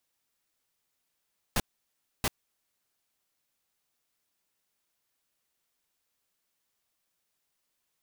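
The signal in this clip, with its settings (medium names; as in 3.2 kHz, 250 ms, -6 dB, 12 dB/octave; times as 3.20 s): noise bursts pink, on 0.04 s, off 0.64 s, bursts 2, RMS -26.5 dBFS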